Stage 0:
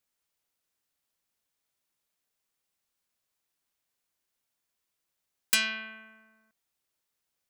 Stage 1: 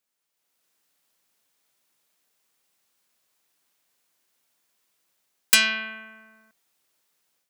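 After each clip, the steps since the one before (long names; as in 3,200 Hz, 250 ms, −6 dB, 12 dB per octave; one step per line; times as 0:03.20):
Bessel high-pass filter 160 Hz, order 2
automatic gain control gain up to 9.5 dB
level +1 dB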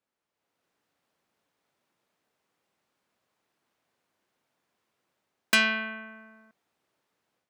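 low-pass filter 1,000 Hz 6 dB per octave
level +5 dB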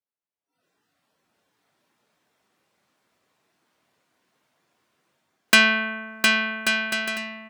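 noise reduction from a noise print of the clip's start 20 dB
on a send: bouncing-ball delay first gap 710 ms, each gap 0.6×, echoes 5
on the sum: level +7 dB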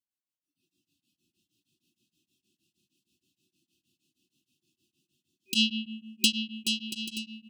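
brick-wall band-stop 380–2,500 Hz
tremolo along a rectified sine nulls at 6.4 Hz
level +1 dB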